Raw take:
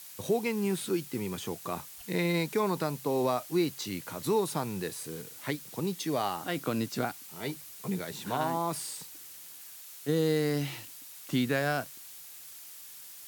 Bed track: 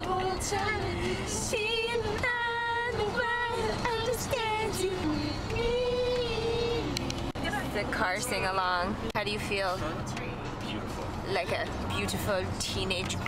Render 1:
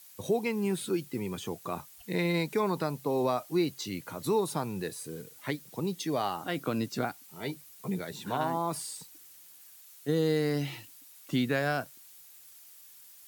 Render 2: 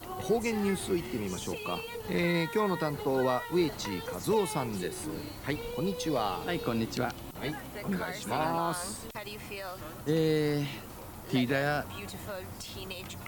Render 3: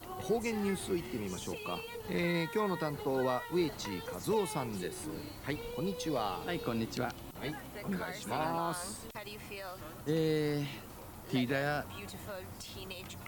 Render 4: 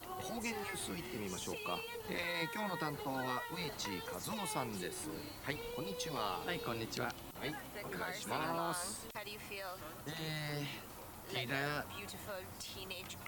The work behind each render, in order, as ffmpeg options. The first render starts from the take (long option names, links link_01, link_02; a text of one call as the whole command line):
ffmpeg -i in.wav -af "afftdn=noise_reduction=8:noise_floor=-48" out.wav
ffmpeg -i in.wav -i bed.wav -filter_complex "[1:a]volume=-10dB[link_01];[0:a][link_01]amix=inputs=2:normalize=0" out.wav
ffmpeg -i in.wav -af "volume=-4dB" out.wav
ffmpeg -i in.wav -af "lowshelf=frequency=420:gain=-6,afftfilt=real='re*lt(hypot(re,im),0.1)':imag='im*lt(hypot(re,im),0.1)':win_size=1024:overlap=0.75" out.wav